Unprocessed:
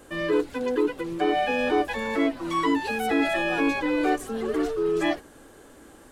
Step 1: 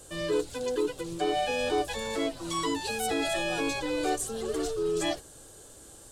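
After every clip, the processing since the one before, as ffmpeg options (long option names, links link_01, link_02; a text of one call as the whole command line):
ffmpeg -i in.wav -af "equalizer=frequency=125:width_type=o:width=1:gain=5,equalizer=frequency=250:width_type=o:width=1:gain=-11,equalizer=frequency=1000:width_type=o:width=1:gain=-5,equalizer=frequency=2000:width_type=o:width=1:gain=-9,equalizer=frequency=4000:width_type=o:width=1:gain=4,equalizer=frequency=8000:width_type=o:width=1:gain=10" out.wav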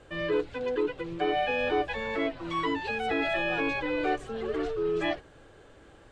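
ffmpeg -i in.wav -af "lowpass=frequency=2200:width_type=q:width=1.8" out.wav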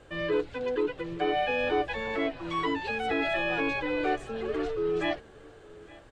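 ffmpeg -i in.wav -af "aecho=1:1:861:0.0794" out.wav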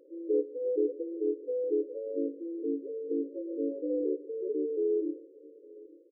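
ffmpeg -i in.wav -filter_complex "[0:a]asplit=2[link_01][link_02];[link_02]adelay=140,highpass=300,lowpass=3400,asoftclip=type=hard:threshold=-25.5dB,volume=-16dB[link_03];[link_01][link_03]amix=inputs=2:normalize=0,afftfilt=real='re*between(b*sr/4096,270,570)':imag='im*between(b*sr/4096,270,570)':win_size=4096:overlap=0.75" out.wav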